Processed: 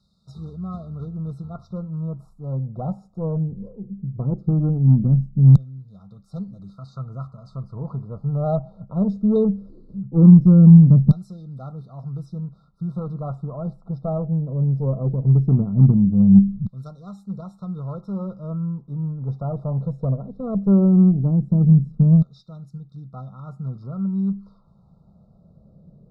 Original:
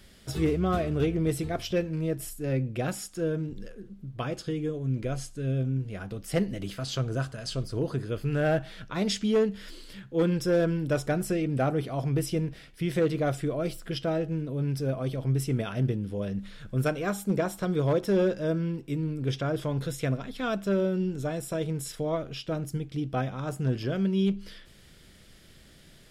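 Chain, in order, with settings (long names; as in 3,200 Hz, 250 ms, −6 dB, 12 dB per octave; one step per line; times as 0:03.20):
spectral tilt −3.5 dB per octave
auto-filter band-pass saw down 0.18 Hz 200–3,200 Hz
harmonic generator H 8 −28 dB, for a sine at −13.5 dBFS
linear-phase brick-wall band-stop 1,400–3,600 Hz
low shelf with overshoot 240 Hz +9.5 dB, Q 3
level +4 dB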